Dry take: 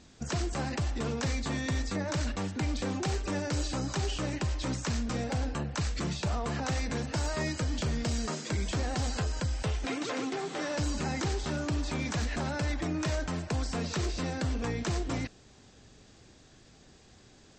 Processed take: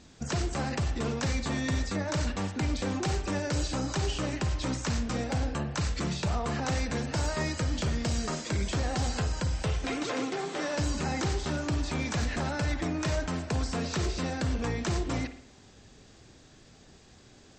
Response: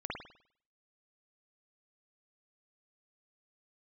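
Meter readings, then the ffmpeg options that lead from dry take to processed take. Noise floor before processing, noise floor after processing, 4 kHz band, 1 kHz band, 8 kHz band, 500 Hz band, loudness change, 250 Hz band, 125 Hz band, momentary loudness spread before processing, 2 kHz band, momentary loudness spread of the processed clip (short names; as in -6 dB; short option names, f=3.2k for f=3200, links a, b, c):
-57 dBFS, -55 dBFS, +1.5 dB, +2.0 dB, +1.5 dB, +2.0 dB, +1.5 dB, +1.5 dB, +1.5 dB, 2 LU, +2.0 dB, 2 LU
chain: -filter_complex "[0:a]asplit=2[a][b];[1:a]atrim=start_sample=2205[c];[b][c]afir=irnorm=-1:irlink=0,volume=-10dB[d];[a][d]amix=inputs=2:normalize=0"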